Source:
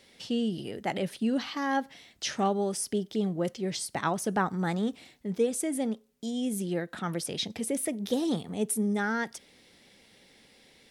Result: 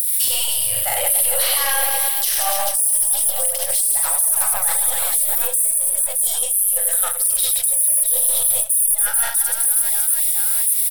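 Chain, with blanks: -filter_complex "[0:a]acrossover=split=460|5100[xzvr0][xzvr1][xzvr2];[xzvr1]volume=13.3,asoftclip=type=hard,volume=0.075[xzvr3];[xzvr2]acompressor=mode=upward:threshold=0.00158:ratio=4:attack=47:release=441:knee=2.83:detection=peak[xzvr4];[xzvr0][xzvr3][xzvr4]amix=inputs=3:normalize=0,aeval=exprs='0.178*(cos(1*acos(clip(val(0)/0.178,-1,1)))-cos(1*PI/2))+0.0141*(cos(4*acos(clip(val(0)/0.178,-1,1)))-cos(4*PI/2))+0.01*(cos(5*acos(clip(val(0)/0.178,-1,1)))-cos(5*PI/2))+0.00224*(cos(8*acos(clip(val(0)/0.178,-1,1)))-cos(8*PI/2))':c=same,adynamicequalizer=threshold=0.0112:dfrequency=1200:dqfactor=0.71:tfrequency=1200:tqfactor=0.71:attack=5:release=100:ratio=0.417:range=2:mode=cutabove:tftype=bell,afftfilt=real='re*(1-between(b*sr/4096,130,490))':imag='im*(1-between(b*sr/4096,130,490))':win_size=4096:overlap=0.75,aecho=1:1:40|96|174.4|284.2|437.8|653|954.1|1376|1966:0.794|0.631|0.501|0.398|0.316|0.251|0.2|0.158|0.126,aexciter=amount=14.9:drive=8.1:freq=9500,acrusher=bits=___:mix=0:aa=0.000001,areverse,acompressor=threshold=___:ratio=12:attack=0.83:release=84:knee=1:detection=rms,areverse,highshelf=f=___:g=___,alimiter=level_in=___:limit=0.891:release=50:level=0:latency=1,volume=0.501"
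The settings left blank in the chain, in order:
9, 0.0794, 3100, 11, 4.47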